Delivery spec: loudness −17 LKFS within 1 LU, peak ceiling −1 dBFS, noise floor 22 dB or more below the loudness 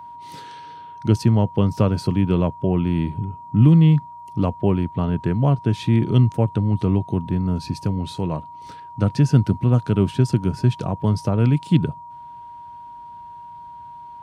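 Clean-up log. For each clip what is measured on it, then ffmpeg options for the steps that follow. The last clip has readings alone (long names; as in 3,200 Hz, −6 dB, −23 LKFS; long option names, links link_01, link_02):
interfering tone 950 Hz; level of the tone −36 dBFS; integrated loudness −20.0 LKFS; sample peak −3.5 dBFS; target loudness −17.0 LKFS
→ -af "bandreject=frequency=950:width=30"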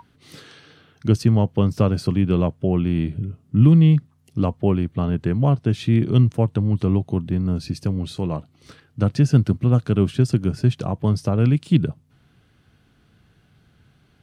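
interfering tone none found; integrated loudness −20.0 LKFS; sample peak −3.0 dBFS; target loudness −17.0 LKFS
→ -af "volume=3dB,alimiter=limit=-1dB:level=0:latency=1"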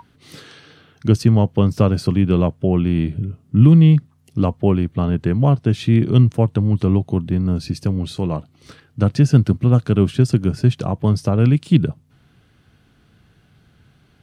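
integrated loudness −17.0 LKFS; sample peak −1.0 dBFS; background noise floor −56 dBFS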